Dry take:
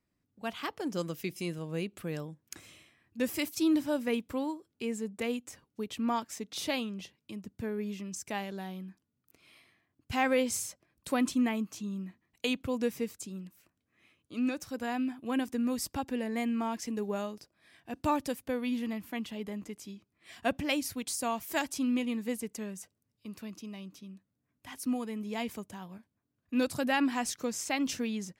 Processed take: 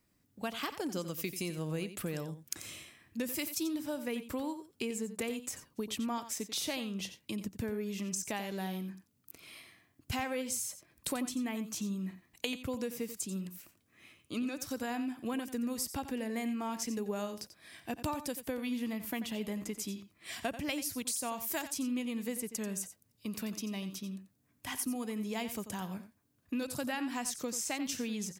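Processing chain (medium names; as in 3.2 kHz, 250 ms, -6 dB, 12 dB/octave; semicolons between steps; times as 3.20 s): treble shelf 5.6 kHz +8.5 dB; compression 6:1, threshold -40 dBFS, peak gain reduction 16 dB; on a send: delay 89 ms -12 dB; on the sum: trim +6 dB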